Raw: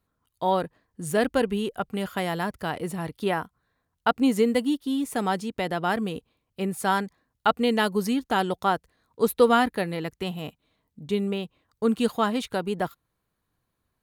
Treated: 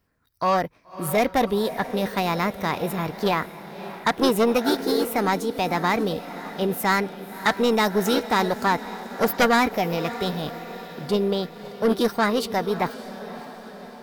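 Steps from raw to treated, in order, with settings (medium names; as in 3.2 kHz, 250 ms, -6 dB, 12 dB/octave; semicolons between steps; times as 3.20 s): saturation -18 dBFS, distortion -13 dB; echo that smears into a reverb 575 ms, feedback 59%, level -14 dB; formant shift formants +4 st; trim +5 dB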